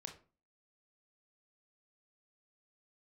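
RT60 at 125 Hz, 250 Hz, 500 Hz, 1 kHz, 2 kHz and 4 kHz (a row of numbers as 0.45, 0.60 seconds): 0.45, 0.50, 0.35, 0.35, 0.30, 0.25 seconds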